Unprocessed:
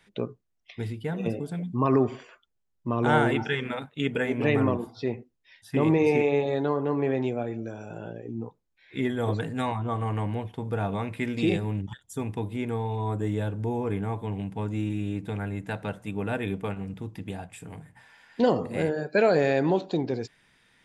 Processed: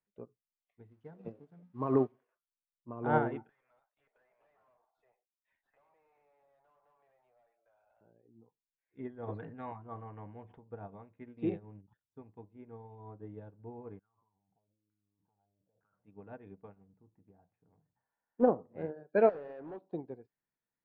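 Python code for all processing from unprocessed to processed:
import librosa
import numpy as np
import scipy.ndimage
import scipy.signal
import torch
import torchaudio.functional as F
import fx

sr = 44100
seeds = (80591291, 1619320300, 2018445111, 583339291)

y = fx.chain(x, sr, fx.crossing_spikes(level_db=-25.0),
    fx.air_absorb(metres=51.0), at=(0.88, 2.12))
y = fx.chain(y, sr, fx.cheby1_highpass(hz=620.0, order=4),
    fx.tube_stage(drive_db=40.0, bias=0.35),
    fx.band_squash(depth_pct=100), at=(3.49, 8.01))
y = fx.chain(y, sr, fx.peak_eq(hz=2100.0, db=5.5, octaves=1.6),
    fx.sustainer(db_per_s=20.0), at=(9.22, 10.58))
y = fx.chain(y, sr, fx.over_compress(threshold_db=-38.0, ratio=-1.0),
    fx.filter_lfo_lowpass(shape='saw_down', hz=1.1, low_hz=460.0, high_hz=1500.0, q=7.7),
    fx.tone_stack(knobs='5-5-5'), at=(13.99, 15.99))
y = fx.chain(y, sr, fx.lowpass(hz=1600.0, slope=12),
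    fx.doppler_dist(depth_ms=0.17), at=(16.84, 18.76))
y = fx.chain(y, sr, fx.highpass(hz=240.0, slope=6),
    fx.clip_hard(threshold_db=-24.5), at=(19.29, 19.82))
y = scipy.signal.sosfilt(scipy.signal.butter(2, 1100.0, 'lowpass', fs=sr, output='sos'), y)
y = fx.low_shelf(y, sr, hz=250.0, db=-5.0)
y = fx.upward_expand(y, sr, threshold_db=-37.0, expansion=2.5)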